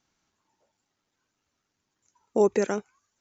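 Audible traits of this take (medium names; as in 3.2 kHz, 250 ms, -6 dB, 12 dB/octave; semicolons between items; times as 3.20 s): noise floor -81 dBFS; spectral tilt -3.5 dB/octave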